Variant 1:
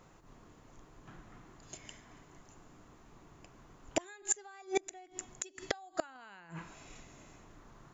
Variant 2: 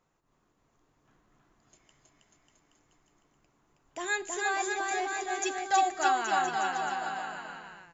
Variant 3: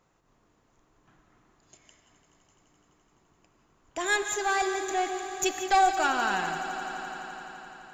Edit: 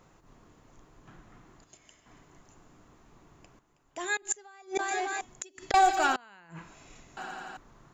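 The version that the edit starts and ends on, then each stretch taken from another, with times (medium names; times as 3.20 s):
1
1.64–2.06 s: from 3
3.59–4.17 s: from 2
4.79–5.21 s: from 2
5.74–6.16 s: from 3
7.17–7.57 s: from 3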